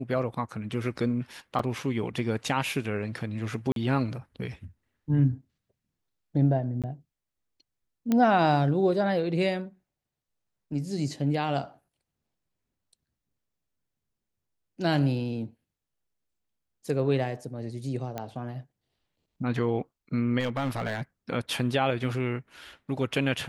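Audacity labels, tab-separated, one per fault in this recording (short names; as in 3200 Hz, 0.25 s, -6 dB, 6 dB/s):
1.590000	1.590000	gap 4.1 ms
3.720000	3.760000	gap 42 ms
6.820000	6.840000	gap 17 ms
8.120000	8.120000	pop -13 dBFS
18.180000	18.180000	pop -19 dBFS
20.390000	21.020000	clipped -24 dBFS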